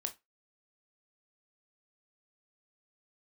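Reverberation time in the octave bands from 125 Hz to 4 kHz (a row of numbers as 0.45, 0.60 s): 0.20, 0.20, 0.20, 0.20, 0.20, 0.15 s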